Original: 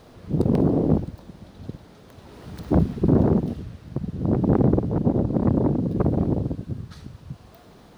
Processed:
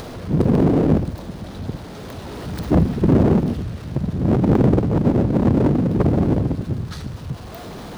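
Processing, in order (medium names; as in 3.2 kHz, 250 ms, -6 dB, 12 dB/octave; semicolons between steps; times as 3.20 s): upward compressor, threshold -40 dBFS; power-law waveshaper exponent 0.7; trim +1.5 dB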